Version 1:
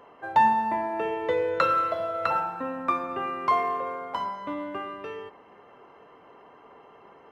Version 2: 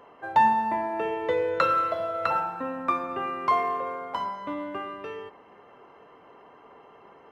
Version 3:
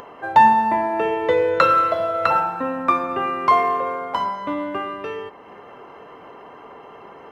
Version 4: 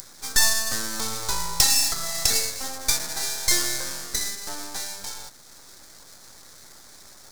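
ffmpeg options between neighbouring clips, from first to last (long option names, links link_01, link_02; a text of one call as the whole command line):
ffmpeg -i in.wav -af anull out.wav
ffmpeg -i in.wav -af "acompressor=mode=upward:threshold=-43dB:ratio=2.5,volume=7.5dB" out.wav
ffmpeg -i in.wav -af "aeval=exprs='abs(val(0))':channel_layout=same,aexciter=amount=13.3:drive=8.3:freq=4400,volume=-9dB" out.wav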